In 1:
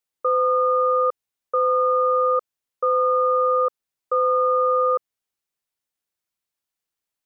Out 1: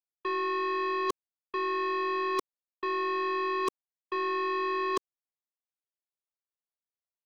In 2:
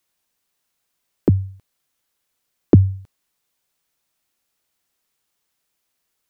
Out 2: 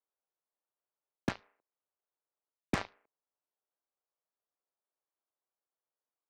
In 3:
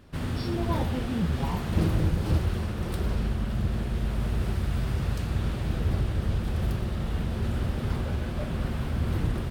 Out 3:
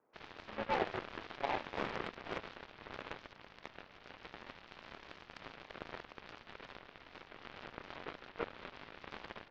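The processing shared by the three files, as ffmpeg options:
-filter_complex "[0:a]acrossover=split=1500[a][b];[a]acrusher=bits=5:mode=log:mix=0:aa=0.000001[c];[b]aeval=exprs='sgn(val(0))*max(abs(val(0))-0.00106,0)':c=same[d];[c][d]amix=inputs=2:normalize=0,highpass=f=510:t=q:w=0.5412,highpass=f=510:t=q:w=1.307,lowpass=f=2.6k:t=q:w=0.5176,lowpass=f=2.6k:t=q:w=0.7071,lowpass=f=2.6k:t=q:w=1.932,afreqshift=-130,areverse,acompressor=threshold=-32dB:ratio=8,areverse,aemphasis=mode=reproduction:type=50kf,acontrast=81,aeval=exprs='0.15*(cos(1*acos(clip(val(0)/0.15,-1,1)))-cos(1*PI/2))+0.00422*(cos(4*acos(clip(val(0)/0.15,-1,1)))-cos(4*PI/2))+0.0168*(cos(5*acos(clip(val(0)/0.15,-1,1)))-cos(5*PI/2))+0.0376*(cos(7*acos(clip(val(0)/0.15,-1,1)))-cos(7*PI/2))':c=same,volume=-4dB"

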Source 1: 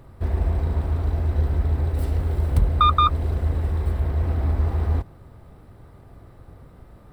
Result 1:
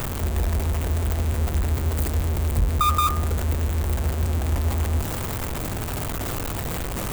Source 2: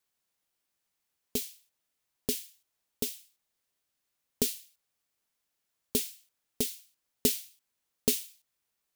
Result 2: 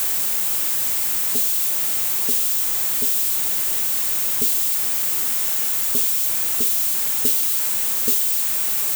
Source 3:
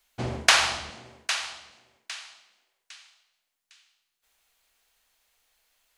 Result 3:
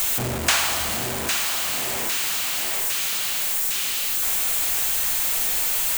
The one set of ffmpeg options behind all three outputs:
-af "aeval=exprs='val(0)+0.5*0.133*sgn(val(0))':c=same,aexciter=amount=1.7:drive=7.9:freq=7k,bandreject=f=71.6:t=h:w=4,bandreject=f=143.2:t=h:w=4,bandreject=f=214.8:t=h:w=4,bandreject=f=286.4:t=h:w=4,bandreject=f=358:t=h:w=4,bandreject=f=429.6:t=h:w=4,bandreject=f=501.2:t=h:w=4,bandreject=f=572.8:t=h:w=4,bandreject=f=644.4:t=h:w=4,bandreject=f=716:t=h:w=4,bandreject=f=787.6:t=h:w=4,bandreject=f=859.2:t=h:w=4,bandreject=f=930.8:t=h:w=4,bandreject=f=1.0024k:t=h:w=4,bandreject=f=1.074k:t=h:w=4,bandreject=f=1.1456k:t=h:w=4,bandreject=f=1.2172k:t=h:w=4,bandreject=f=1.2888k:t=h:w=4,bandreject=f=1.3604k:t=h:w=4,bandreject=f=1.432k:t=h:w=4,bandreject=f=1.5036k:t=h:w=4,bandreject=f=1.5752k:t=h:w=4,bandreject=f=1.6468k:t=h:w=4,bandreject=f=1.7184k:t=h:w=4,bandreject=f=1.79k:t=h:w=4,bandreject=f=1.8616k:t=h:w=4,bandreject=f=1.9332k:t=h:w=4,bandreject=f=2.0048k:t=h:w=4,bandreject=f=2.0764k:t=h:w=4,volume=-5dB"

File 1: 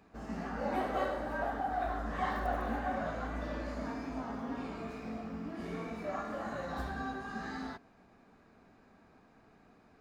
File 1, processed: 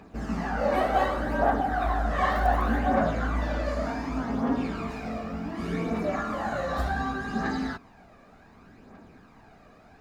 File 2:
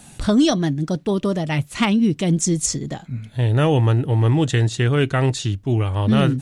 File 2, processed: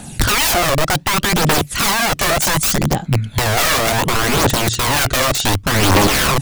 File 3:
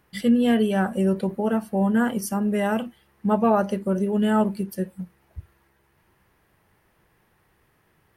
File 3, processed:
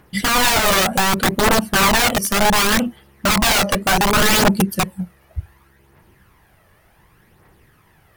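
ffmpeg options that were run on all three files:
-af "aeval=exprs='(mod(10*val(0)+1,2)-1)/10':c=same,aphaser=in_gain=1:out_gain=1:delay=1.8:decay=0.45:speed=0.67:type=triangular,volume=8.5dB"

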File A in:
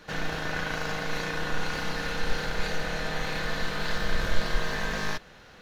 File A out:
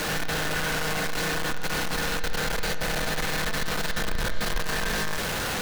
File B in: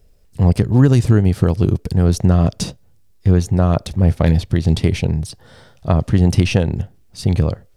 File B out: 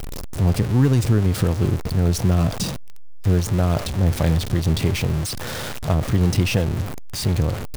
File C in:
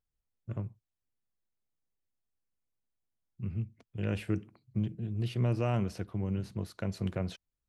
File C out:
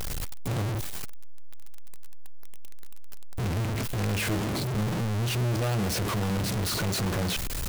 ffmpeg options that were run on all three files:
-af "aeval=exprs='val(0)+0.5*0.15*sgn(val(0))':c=same,volume=-6.5dB"

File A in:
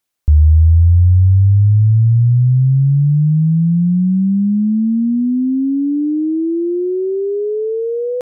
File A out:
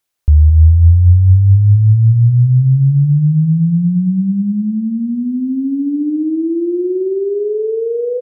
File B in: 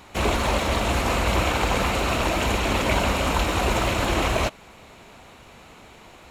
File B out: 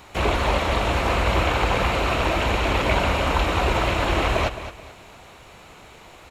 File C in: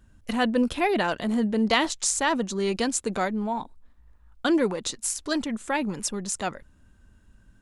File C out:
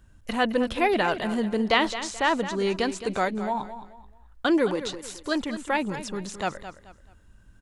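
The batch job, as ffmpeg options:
-filter_complex "[0:a]acrossover=split=4300[a][b];[b]acompressor=threshold=-45dB:ratio=4:attack=1:release=60[c];[a][c]amix=inputs=2:normalize=0,equalizer=f=230:t=o:w=0.59:g=-5,aecho=1:1:216|432|648:0.251|0.0754|0.0226,volume=1.5dB"

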